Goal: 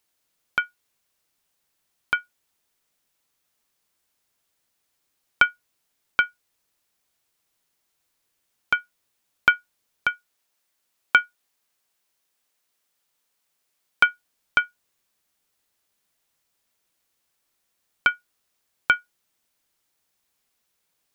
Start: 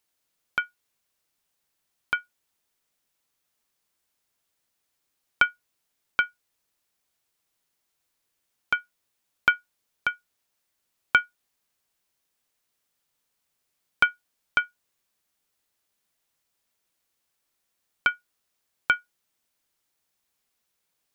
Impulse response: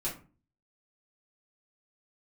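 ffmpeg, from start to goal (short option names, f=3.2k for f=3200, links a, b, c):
-filter_complex "[0:a]asettb=1/sr,asplit=3[a][b][c];[a]atrim=end=10.084[d];[b]atrim=start=10.08:end=14.04,asetpts=PTS-STARTPTS,afade=t=in:d=0.004:c=qsin,afade=t=out:st=3.956:d=0.004:c=qsin,lowshelf=f=200:g=-8.5[e];[c]atrim=start=14.036[f];[d][e]acrossfade=d=0.004:c1=hsin:c2=qsin[g];[g][f]acrossfade=d=0.004:c1=qsin:c2=hsin,volume=3dB"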